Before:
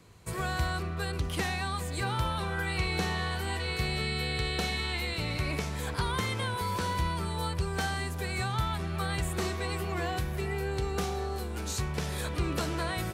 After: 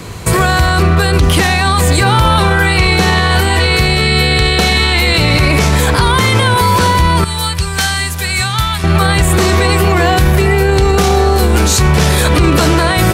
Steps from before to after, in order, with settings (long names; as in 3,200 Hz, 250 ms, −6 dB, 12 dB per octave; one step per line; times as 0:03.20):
0:07.24–0:08.84: guitar amp tone stack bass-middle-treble 5-5-5
boost into a limiter +30 dB
level −1 dB